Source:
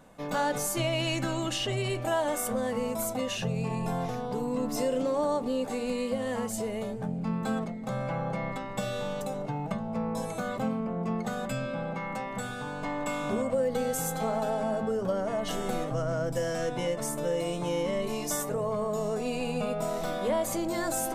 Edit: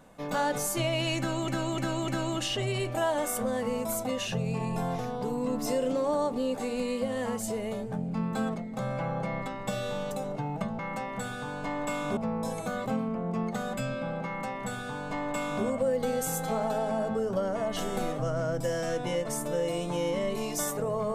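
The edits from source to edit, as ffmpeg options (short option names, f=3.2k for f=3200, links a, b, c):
-filter_complex "[0:a]asplit=6[a][b][c][d][e][f];[a]atrim=end=1.482[g];[b]atrim=start=1.178:end=1.482[h];[c]atrim=start=1.178:end=1.482[i];[d]atrim=start=1.178:end=9.892[j];[e]atrim=start=11.978:end=13.362[k];[f]atrim=start=9.888[l];[g][h]acrossfade=d=0.004:c1=hsin:c2=hsin[m];[m][i]acrossfade=d=0.004:c1=hsin:c2=hsin[n];[n][j]acrossfade=d=0.004:c1=hsin:c2=hsin[o];[o][k]acrossfade=d=0.004:c1=hsin:c2=hsin[p];[p][l]acrossfade=d=0.004:c1=hsin:c2=hsin"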